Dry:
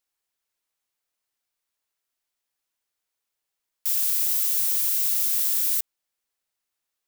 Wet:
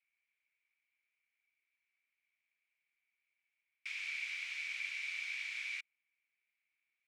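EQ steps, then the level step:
resonant band-pass 2,300 Hz, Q 16
high-frequency loss of the air 130 metres
+18.0 dB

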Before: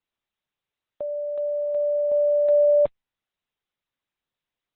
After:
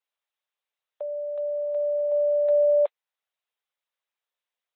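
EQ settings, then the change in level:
Butterworth high-pass 460 Hz
−2.0 dB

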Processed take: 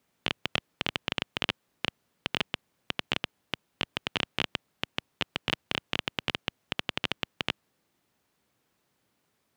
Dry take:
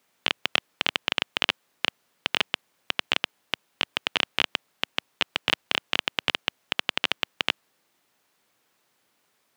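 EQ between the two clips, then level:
low-shelf EQ 98 Hz +9 dB
low-shelf EQ 390 Hz +9.5 dB
−6.5 dB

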